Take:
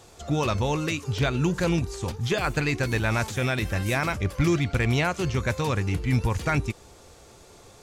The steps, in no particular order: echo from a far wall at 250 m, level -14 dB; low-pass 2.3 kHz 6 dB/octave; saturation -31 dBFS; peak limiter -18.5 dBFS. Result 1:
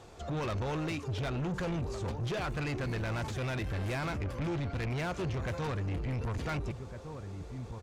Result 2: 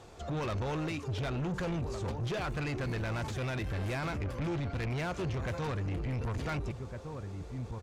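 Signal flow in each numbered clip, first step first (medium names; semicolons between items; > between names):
low-pass > peak limiter > echo from a far wall > saturation; echo from a far wall > peak limiter > low-pass > saturation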